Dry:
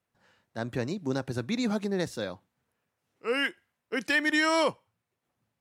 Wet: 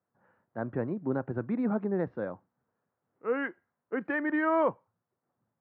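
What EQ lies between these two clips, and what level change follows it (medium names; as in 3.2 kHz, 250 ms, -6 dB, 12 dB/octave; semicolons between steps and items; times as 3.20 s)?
high-pass 110 Hz; low-pass 1.5 kHz 24 dB/octave; 0.0 dB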